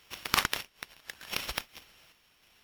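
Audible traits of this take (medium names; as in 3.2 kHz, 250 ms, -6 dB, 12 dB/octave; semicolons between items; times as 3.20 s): a buzz of ramps at a fixed pitch in blocks of 8 samples; random-step tremolo 3.3 Hz; aliases and images of a low sample rate 8.5 kHz, jitter 20%; MP3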